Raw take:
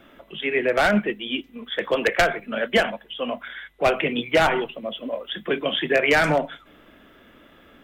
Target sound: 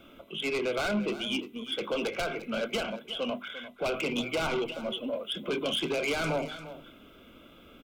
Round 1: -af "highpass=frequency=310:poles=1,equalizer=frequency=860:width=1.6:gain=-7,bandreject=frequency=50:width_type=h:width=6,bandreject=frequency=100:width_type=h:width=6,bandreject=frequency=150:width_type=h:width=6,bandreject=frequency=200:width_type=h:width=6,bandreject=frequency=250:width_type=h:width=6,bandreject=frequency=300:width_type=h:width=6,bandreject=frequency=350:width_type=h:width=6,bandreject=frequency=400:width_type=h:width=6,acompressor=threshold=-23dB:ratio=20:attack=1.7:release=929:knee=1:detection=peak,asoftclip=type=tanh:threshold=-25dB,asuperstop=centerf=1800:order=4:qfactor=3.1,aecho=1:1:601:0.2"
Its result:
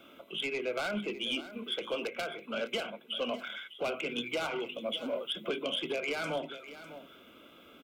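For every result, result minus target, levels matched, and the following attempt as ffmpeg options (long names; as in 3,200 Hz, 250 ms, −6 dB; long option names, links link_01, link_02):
echo 254 ms late; downward compressor: peak gain reduction +7 dB; 250 Hz band −2.5 dB
-af "highpass=frequency=310:poles=1,equalizer=frequency=860:width=1.6:gain=-7,bandreject=frequency=50:width_type=h:width=6,bandreject=frequency=100:width_type=h:width=6,bandreject=frequency=150:width_type=h:width=6,bandreject=frequency=200:width_type=h:width=6,bandreject=frequency=250:width_type=h:width=6,bandreject=frequency=300:width_type=h:width=6,bandreject=frequency=350:width_type=h:width=6,bandreject=frequency=400:width_type=h:width=6,acompressor=threshold=-23dB:ratio=20:attack=1.7:release=929:knee=1:detection=peak,asoftclip=type=tanh:threshold=-25dB,asuperstop=centerf=1800:order=4:qfactor=3.1,aecho=1:1:347:0.2"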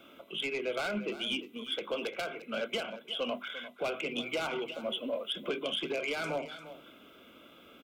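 downward compressor: peak gain reduction +7 dB; 250 Hz band −2.5 dB
-af "highpass=frequency=310:poles=1,equalizer=frequency=860:width=1.6:gain=-7,bandreject=frequency=50:width_type=h:width=6,bandreject=frequency=100:width_type=h:width=6,bandreject=frequency=150:width_type=h:width=6,bandreject=frequency=200:width_type=h:width=6,bandreject=frequency=250:width_type=h:width=6,bandreject=frequency=300:width_type=h:width=6,bandreject=frequency=350:width_type=h:width=6,bandreject=frequency=400:width_type=h:width=6,acompressor=threshold=-15.5dB:ratio=20:attack=1.7:release=929:knee=1:detection=peak,asoftclip=type=tanh:threshold=-25dB,asuperstop=centerf=1800:order=4:qfactor=3.1,aecho=1:1:347:0.2"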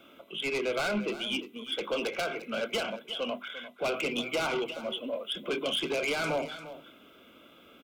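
250 Hz band −2.5 dB
-af "equalizer=frequency=860:width=1.6:gain=-7,bandreject=frequency=50:width_type=h:width=6,bandreject=frequency=100:width_type=h:width=6,bandreject=frequency=150:width_type=h:width=6,bandreject=frequency=200:width_type=h:width=6,bandreject=frequency=250:width_type=h:width=6,bandreject=frequency=300:width_type=h:width=6,bandreject=frequency=350:width_type=h:width=6,bandreject=frequency=400:width_type=h:width=6,acompressor=threshold=-15.5dB:ratio=20:attack=1.7:release=929:knee=1:detection=peak,asoftclip=type=tanh:threshold=-25dB,asuperstop=centerf=1800:order=4:qfactor=3.1,aecho=1:1:347:0.2"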